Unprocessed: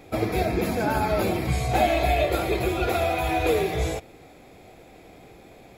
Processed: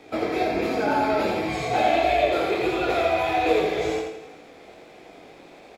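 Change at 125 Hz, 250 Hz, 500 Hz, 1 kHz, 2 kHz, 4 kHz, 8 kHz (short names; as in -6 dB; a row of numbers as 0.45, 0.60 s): -10.0, +0.5, +2.0, +2.5, +2.0, +1.5, -5.5 dB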